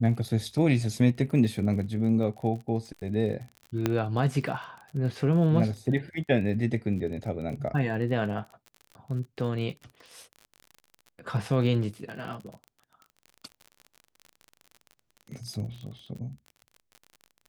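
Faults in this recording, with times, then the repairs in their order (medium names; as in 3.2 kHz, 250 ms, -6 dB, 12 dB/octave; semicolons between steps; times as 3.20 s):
crackle 38 per s -37 dBFS
3.86 s: pop -11 dBFS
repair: de-click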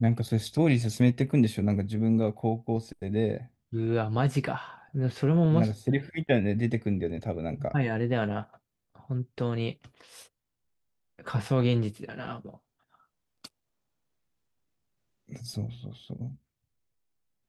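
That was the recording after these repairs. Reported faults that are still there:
nothing left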